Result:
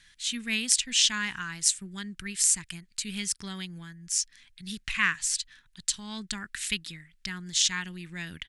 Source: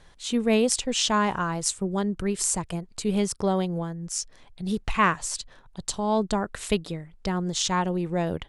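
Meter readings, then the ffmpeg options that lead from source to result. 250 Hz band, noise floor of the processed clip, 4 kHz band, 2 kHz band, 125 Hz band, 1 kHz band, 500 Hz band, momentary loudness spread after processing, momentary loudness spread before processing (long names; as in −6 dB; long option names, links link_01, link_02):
−12.0 dB, −64 dBFS, +3.0 dB, +1.5 dB, −12.0 dB, −15.0 dB, −24.5 dB, 15 LU, 10 LU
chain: -af "firequalizer=gain_entry='entry(250,0);entry(520,-19);entry(1700,15)':delay=0.05:min_phase=1,volume=-12dB"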